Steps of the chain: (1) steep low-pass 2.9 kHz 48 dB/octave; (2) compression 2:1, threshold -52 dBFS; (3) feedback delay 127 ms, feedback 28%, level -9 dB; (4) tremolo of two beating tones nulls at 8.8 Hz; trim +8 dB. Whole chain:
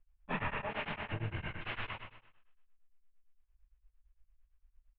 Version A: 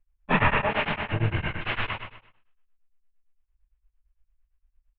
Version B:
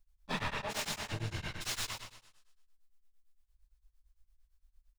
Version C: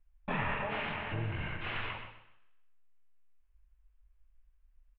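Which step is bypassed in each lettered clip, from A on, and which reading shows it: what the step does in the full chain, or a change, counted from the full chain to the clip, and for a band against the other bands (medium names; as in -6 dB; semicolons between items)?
2, mean gain reduction 12.0 dB; 1, 4 kHz band +9.0 dB; 4, loudness change +3.0 LU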